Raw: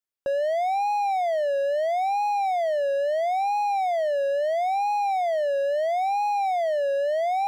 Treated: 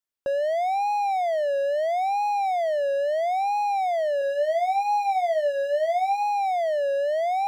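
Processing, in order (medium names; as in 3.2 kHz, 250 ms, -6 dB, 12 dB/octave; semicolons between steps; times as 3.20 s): 4.19–6.23 s: doubling 24 ms -6.5 dB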